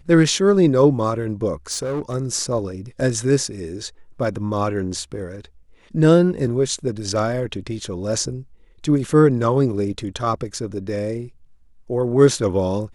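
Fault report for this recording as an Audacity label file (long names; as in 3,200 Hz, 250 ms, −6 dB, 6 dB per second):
1.710000	2.150000	clipping −20.5 dBFS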